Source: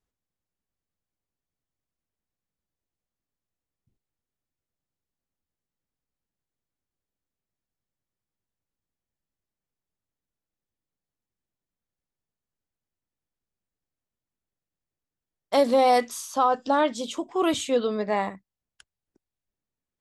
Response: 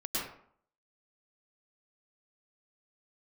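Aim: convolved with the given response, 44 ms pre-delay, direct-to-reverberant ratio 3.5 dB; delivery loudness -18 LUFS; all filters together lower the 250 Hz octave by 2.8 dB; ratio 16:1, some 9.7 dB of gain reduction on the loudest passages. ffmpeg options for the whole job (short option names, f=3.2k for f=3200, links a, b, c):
-filter_complex "[0:a]equalizer=f=250:t=o:g=-3.5,acompressor=threshold=-25dB:ratio=16,asplit=2[a][b];[1:a]atrim=start_sample=2205,adelay=44[c];[b][c]afir=irnorm=-1:irlink=0,volume=-8.5dB[d];[a][d]amix=inputs=2:normalize=0,volume=11.5dB"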